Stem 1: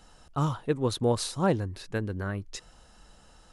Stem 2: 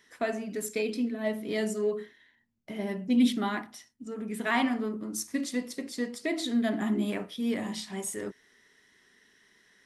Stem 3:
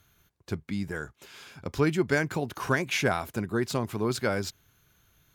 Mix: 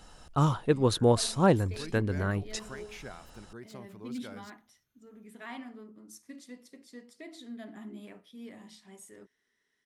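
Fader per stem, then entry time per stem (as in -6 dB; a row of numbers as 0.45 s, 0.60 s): +2.5 dB, -16.0 dB, -19.0 dB; 0.00 s, 0.95 s, 0.00 s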